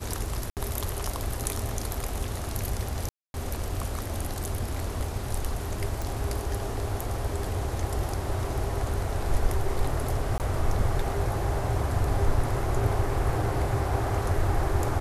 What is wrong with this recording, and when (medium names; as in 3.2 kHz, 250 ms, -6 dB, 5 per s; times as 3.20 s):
0.50–0.57 s: dropout 68 ms
3.09–3.34 s: dropout 251 ms
6.02 s: pop
10.38–10.40 s: dropout 18 ms